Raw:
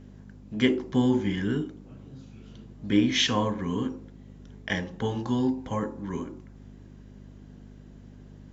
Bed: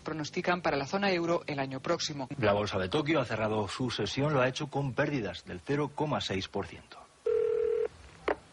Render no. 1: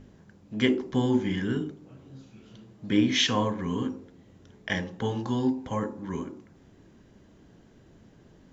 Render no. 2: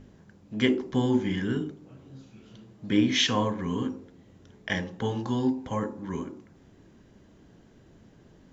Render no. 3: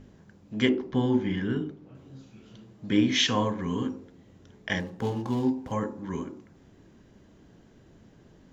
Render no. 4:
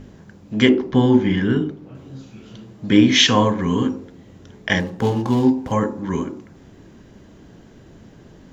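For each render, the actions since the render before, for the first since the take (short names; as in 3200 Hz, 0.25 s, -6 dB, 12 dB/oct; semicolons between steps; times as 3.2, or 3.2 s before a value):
de-hum 50 Hz, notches 9
nothing audible
0.69–1.95 air absorption 130 m; 4.8–5.72 median filter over 15 samples
gain +10 dB; limiter -1 dBFS, peak gain reduction 1.5 dB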